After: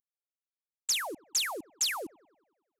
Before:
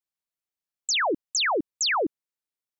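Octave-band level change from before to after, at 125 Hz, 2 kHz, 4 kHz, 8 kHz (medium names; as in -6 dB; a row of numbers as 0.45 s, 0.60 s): under -10 dB, -10.0 dB, -5.0 dB, -2.0 dB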